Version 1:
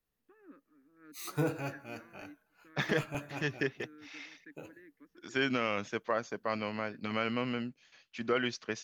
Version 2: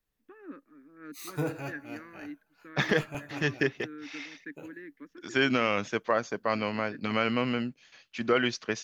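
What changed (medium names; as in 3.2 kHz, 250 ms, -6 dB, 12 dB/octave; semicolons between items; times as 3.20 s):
first voice +11.0 dB; second voice +5.5 dB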